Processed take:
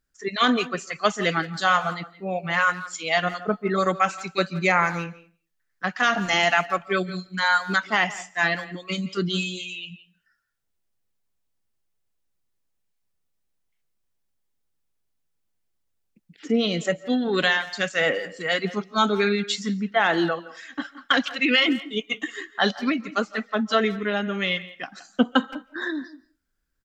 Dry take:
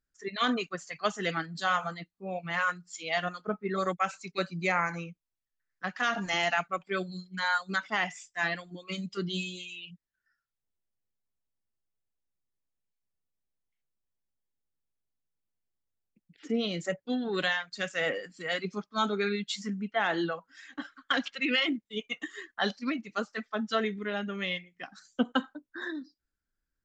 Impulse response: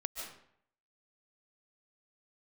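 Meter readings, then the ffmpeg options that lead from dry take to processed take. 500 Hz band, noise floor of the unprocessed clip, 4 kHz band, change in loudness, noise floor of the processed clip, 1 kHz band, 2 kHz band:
+8.0 dB, under -85 dBFS, +8.0 dB, +8.0 dB, -74 dBFS, +8.0 dB, +8.0 dB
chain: -filter_complex "[0:a]asplit=2[s0][s1];[s1]adelay=170,highpass=300,lowpass=3400,asoftclip=type=hard:threshold=0.0708,volume=0.158[s2];[s0][s2]amix=inputs=2:normalize=0,asplit=2[s3][s4];[1:a]atrim=start_sample=2205,afade=t=out:st=0.3:d=0.01,atrim=end_sample=13671[s5];[s4][s5]afir=irnorm=-1:irlink=0,volume=0.133[s6];[s3][s6]amix=inputs=2:normalize=0,volume=2.24"

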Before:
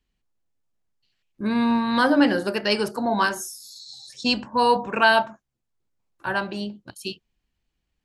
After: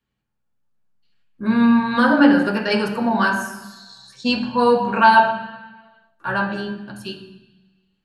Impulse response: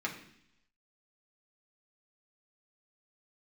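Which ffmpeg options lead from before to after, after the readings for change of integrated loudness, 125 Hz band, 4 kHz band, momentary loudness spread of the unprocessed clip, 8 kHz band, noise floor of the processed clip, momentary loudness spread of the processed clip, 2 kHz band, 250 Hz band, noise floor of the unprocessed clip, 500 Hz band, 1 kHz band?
+4.5 dB, +6.5 dB, -1.0 dB, 17 LU, -4.5 dB, -74 dBFS, 19 LU, +3.5 dB, +6.0 dB, -79 dBFS, +3.0 dB, +5.5 dB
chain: -filter_complex "[1:a]atrim=start_sample=2205,asetrate=29547,aresample=44100[s0];[0:a][s0]afir=irnorm=-1:irlink=0,volume=0.708"

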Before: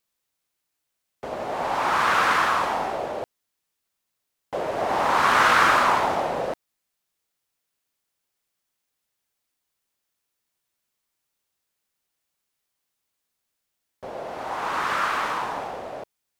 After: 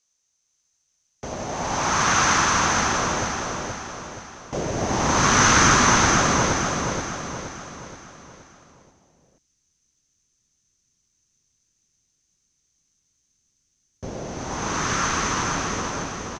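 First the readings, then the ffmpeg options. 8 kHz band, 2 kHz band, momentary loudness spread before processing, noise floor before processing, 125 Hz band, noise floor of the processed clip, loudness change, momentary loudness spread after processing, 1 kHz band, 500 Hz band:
+18.5 dB, +1.5 dB, 18 LU, -80 dBFS, +15.5 dB, -72 dBFS, +1.5 dB, 20 LU, 0.0 dB, +0.5 dB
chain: -af "asubboost=boost=7.5:cutoff=240,lowpass=f=6200:t=q:w=14,aecho=1:1:474|948|1422|1896|2370|2844:0.668|0.314|0.148|0.0694|0.0326|0.0153"

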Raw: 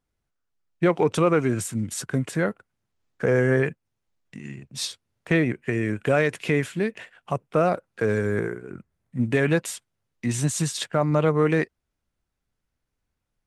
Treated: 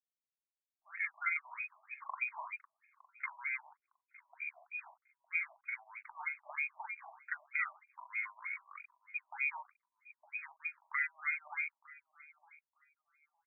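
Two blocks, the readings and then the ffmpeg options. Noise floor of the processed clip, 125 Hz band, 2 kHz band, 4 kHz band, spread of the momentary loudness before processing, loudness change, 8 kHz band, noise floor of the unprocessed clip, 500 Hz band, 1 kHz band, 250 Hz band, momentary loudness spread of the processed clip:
under -85 dBFS, under -40 dB, -6.5 dB, under -40 dB, 12 LU, -15.0 dB, under -40 dB, -81 dBFS, under -40 dB, -15.0 dB, under -40 dB, 15 LU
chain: -filter_complex "[0:a]asoftclip=type=tanh:threshold=0.211,acrossover=split=410[s0][s1];[s0]aeval=exprs='val(0)*(1-1/2+1/2*cos(2*PI*3.6*n/s))':c=same[s2];[s1]aeval=exprs='val(0)*(1-1/2-1/2*cos(2*PI*3.6*n/s))':c=same[s3];[s2][s3]amix=inputs=2:normalize=0,lowpass=f=2200:t=q:w=0.5098,lowpass=f=2200:t=q:w=0.6013,lowpass=f=2200:t=q:w=0.9,lowpass=f=2200:t=q:w=2.563,afreqshift=-2600,acompressor=threshold=0.0141:ratio=3,asplit=2[s4][s5];[s5]adelay=41,volume=0.794[s6];[s4][s6]amix=inputs=2:normalize=0,bandreject=f=162.6:t=h:w=4,bandreject=f=325.2:t=h:w=4,bandreject=f=487.8:t=h:w=4,bandreject=f=650.4:t=h:w=4,bandreject=f=813:t=h:w=4,bandreject=f=975.6:t=h:w=4,aeval=exprs='val(0)*gte(abs(val(0)),0.00133)':c=same,lowshelf=f=460:g=-8.5,asplit=2[s7][s8];[s8]aecho=0:1:909|1818:0.0891|0.0152[s9];[s7][s9]amix=inputs=2:normalize=0,afftfilt=real='re*between(b*sr/1024,810*pow(2000/810,0.5+0.5*sin(2*PI*3.2*pts/sr))/1.41,810*pow(2000/810,0.5+0.5*sin(2*PI*3.2*pts/sr))*1.41)':imag='im*between(b*sr/1024,810*pow(2000/810,0.5+0.5*sin(2*PI*3.2*pts/sr))/1.41,810*pow(2000/810,0.5+0.5*sin(2*PI*3.2*pts/sr))*1.41)':win_size=1024:overlap=0.75,volume=1.12"

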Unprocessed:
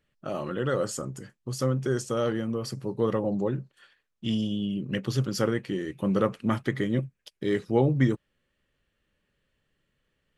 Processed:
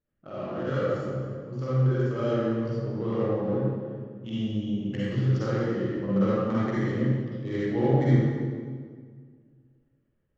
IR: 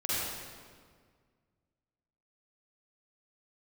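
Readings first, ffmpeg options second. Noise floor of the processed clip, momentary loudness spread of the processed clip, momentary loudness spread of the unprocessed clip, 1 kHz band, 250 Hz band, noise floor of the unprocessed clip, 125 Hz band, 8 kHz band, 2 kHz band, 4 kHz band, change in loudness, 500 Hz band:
-73 dBFS, 12 LU, 10 LU, 0.0 dB, +1.0 dB, -78 dBFS, +4.0 dB, under -15 dB, -1.5 dB, -6.0 dB, +1.0 dB, +0.5 dB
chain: -filter_complex "[0:a]adynamicsmooth=sensitivity=4:basefreq=1300[s0];[1:a]atrim=start_sample=2205[s1];[s0][s1]afir=irnorm=-1:irlink=0,aresample=16000,aresample=44100,volume=0.398"

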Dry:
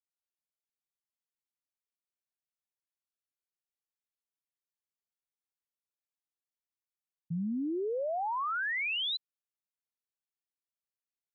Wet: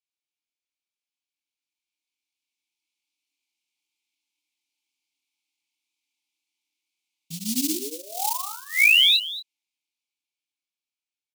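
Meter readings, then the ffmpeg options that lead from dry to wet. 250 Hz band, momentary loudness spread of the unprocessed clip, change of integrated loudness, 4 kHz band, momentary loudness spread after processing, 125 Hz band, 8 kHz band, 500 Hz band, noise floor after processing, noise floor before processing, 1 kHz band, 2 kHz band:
+3.5 dB, 7 LU, +13.5 dB, +16.5 dB, 18 LU, -2.5 dB, no reading, -5.5 dB, under -85 dBFS, under -85 dBFS, +1.0 dB, +12.5 dB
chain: -filter_complex "[0:a]asplit=3[s0][s1][s2];[s0]bandpass=f=300:t=q:w=8,volume=1[s3];[s1]bandpass=f=870:t=q:w=8,volume=0.501[s4];[s2]bandpass=f=2240:t=q:w=8,volume=0.355[s5];[s3][s4][s5]amix=inputs=3:normalize=0,bandreject=f=60:t=h:w=6,bandreject=f=120:t=h:w=6,bandreject=f=180:t=h:w=6,bandreject=f=240:t=h:w=6,bandreject=f=300:t=h:w=6,acompressor=threshold=0.00708:ratio=16,flanger=delay=22.5:depth=3.4:speed=2,acrusher=bits=6:mode=log:mix=0:aa=0.000001,aexciter=amount=12.9:drive=7.1:freq=2500,dynaudnorm=f=670:g=7:m=3.76,asplit=2[s6][s7];[s7]aecho=0:1:229:0.178[s8];[s6][s8]amix=inputs=2:normalize=0,volume=2.51"

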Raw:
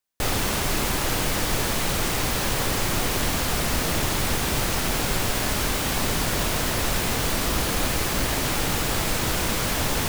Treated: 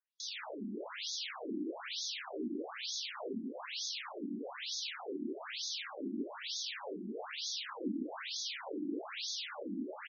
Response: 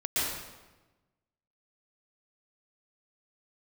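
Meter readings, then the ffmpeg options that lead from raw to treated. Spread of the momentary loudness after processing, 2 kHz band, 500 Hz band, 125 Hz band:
4 LU, -18.5 dB, -15.0 dB, under -30 dB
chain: -filter_complex "[0:a]acrossover=split=390|3000[s0][s1][s2];[s1]acompressor=threshold=0.0126:ratio=6[s3];[s0][s3][s2]amix=inputs=3:normalize=0,asplit=2[s4][s5];[s5]acrusher=samples=32:mix=1:aa=0.000001:lfo=1:lforange=32:lforate=0.23,volume=0.282[s6];[s4][s6]amix=inputs=2:normalize=0,flanger=delay=0.6:depth=3.2:regen=-36:speed=0.26:shape=triangular,aecho=1:1:154.5|224.5:0.794|0.251,asplit=2[s7][s8];[1:a]atrim=start_sample=2205[s9];[s8][s9]afir=irnorm=-1:irlink=0,volume=0.1[s10];[s7][s10]amix=inputs=2:normalize=0,afftfilt=real='re*between(b*sr/1024,250*pow(4800/250,0.5+0.5*sin(2*PI*1.1*pts/sr))/1.41,250*pow(4800/250,0.5+0.5*sin(2*PI*1.1*pts/sr))*1.41)':imag='im*between(b*sr/1024,250*pow(4800/250,0.5+0.5*sin(2*PI*1.1*pts/sr))/1.41,250*pow(4800/250,0.5+0.5*sin(2*PI*1.1*pts/sr))*1.41)':win_size=1024:overlap=0.75,volume=0.668"

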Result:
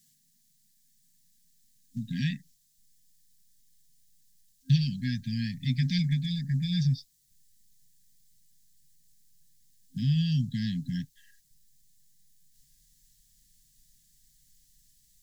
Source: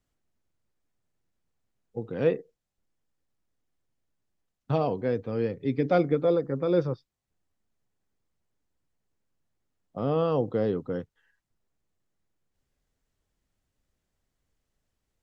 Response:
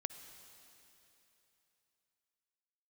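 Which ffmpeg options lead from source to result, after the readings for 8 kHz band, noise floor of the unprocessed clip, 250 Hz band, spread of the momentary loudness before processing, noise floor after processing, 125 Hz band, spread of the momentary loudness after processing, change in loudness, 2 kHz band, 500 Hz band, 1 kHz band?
no reading, -83 dBFS, -0.5 dB, 12 LU, -68 dBFS, +6.5 dB, 11 LU, -2.0 dB, -0.5 dB, under -40 dB, under -40 dB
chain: -filter_complex "[0:a]asplit=2[s0][s1];[s1]acompressor=threshold=0.0251:ratio=16,volume=1.12[s2];[s0][s2]amix=inputs=2:normalize=0,asubboost=boost=11.5:cutoff=58,aexciter=amount=6.9:drive=2.3:freq=3600,afftfilt=real='re*(1-between(b*sr/4096,260,1600))':imag='im*(1-between(b*sr/4096,260,1600))':win_size=4096:overlap=0.75,lowshelf=f=110:t=q:w=3:g=-11"

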